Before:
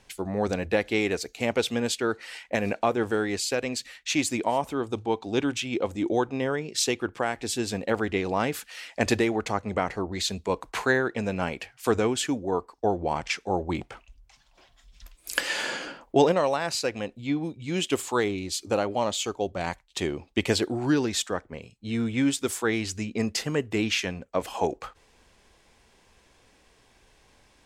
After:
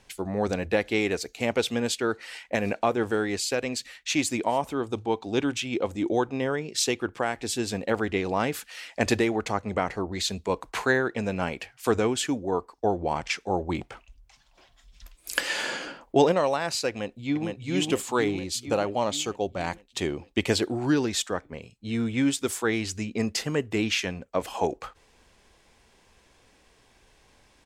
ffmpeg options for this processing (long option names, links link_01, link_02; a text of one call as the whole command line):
ffmpeg -i in.wav -filter_complex "[0:a]asplit=2[link_01][link_02];[link_02]afade=type=in:start_time=16.89:duration=0.01,afade=type=out:start_time=17.47:duration=0.01,aecho=0:1:460|920|1380|1840|2300|2760|3220|3680|4140:0.749894|0.449937|0.269962|0.161977|0.0971863|0.0583118|0.0349871|0.0209922|0.0125953[link_03];[link_01][link_03]amix=inputs=2:normalize=0" out.wav